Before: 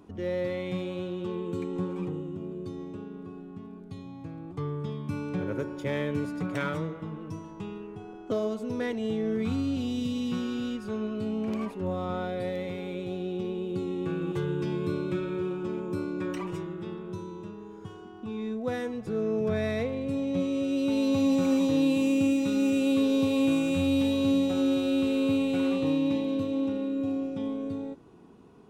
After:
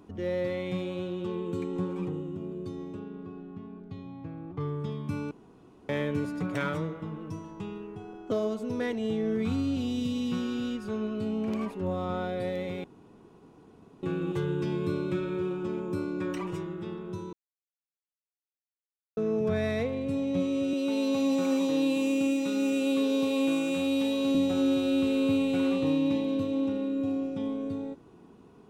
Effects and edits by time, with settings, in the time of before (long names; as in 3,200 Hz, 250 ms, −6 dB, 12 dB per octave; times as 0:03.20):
0:02.99–0:04.59: low-pass filter 5,200 Hz → 2,800 Hz
0:05.31–0:05.89: fill with room tone
0:12.84–0:14.03: fill with room tone
0:17.33–0:19.17: silence
0:20.73–0:24.35: high-pass filter 260 Hz